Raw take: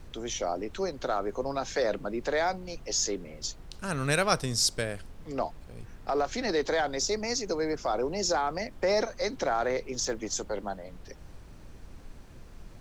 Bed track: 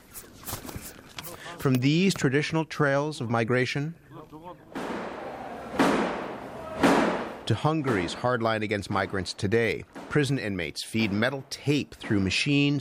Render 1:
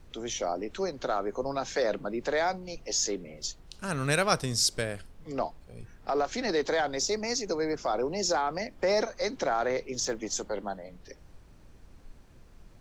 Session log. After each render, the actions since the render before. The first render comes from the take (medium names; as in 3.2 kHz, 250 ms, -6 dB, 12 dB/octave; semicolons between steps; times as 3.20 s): noise print and reduce 6 dB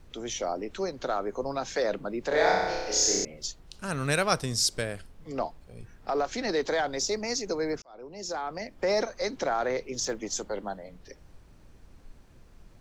2.28–3.25 s: flutter echo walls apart 5.3 m, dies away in 1.3 s; 7.82–8.91 s: fade in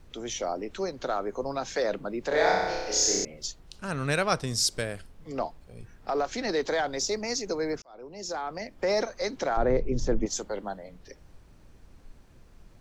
3.79–4.47 s: treble shelf 8.4 kHz -11.5 dB; 9.57–10.26 s: tilt EQ -4.5 dB/octave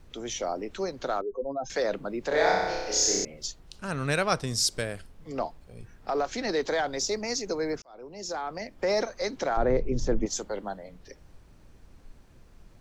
1.21–1.70 s: spectral contrast enhancement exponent 2.5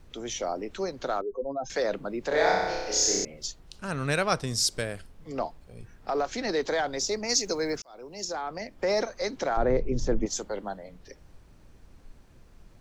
7.29–8.25 s: treble shelf 2.8 kHz +9.5 dB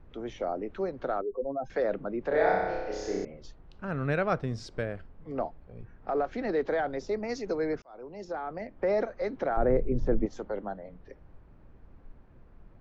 low-pass 1.6 kHz 12 dB/octave; dynamic bell 990 Hz, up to -6 dB, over -47 dBFS, Q 3.3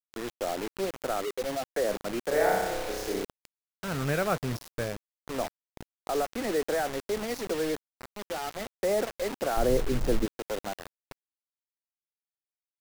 bit crusher 6-bit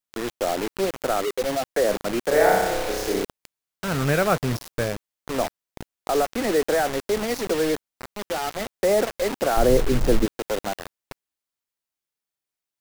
trim +7 dB